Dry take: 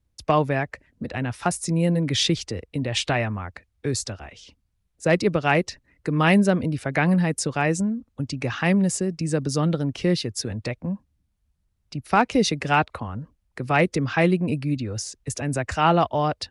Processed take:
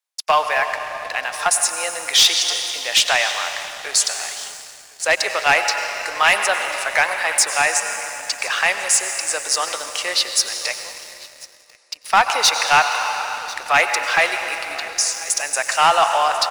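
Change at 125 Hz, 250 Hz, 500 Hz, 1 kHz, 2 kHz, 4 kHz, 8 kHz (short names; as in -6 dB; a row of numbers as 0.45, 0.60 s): under -20 dB, -21.5 dB, -0.5 dB, +7.0 dB, +9.5 dB, +12.0 dB, +14.0 dB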